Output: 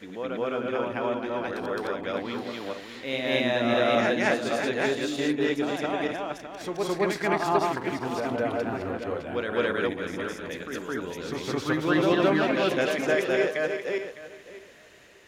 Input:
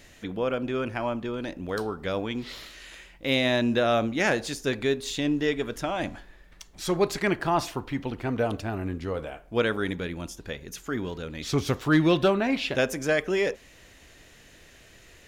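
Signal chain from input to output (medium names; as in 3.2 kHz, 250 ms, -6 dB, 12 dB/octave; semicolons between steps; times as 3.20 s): backward echo that repeats 304 ms, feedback 40%, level -2 dB; high-pass 360 Hz 6 dB/octave; treble shelf 3 kHz -8.5 dB; reverse echo 214 ms -4 dB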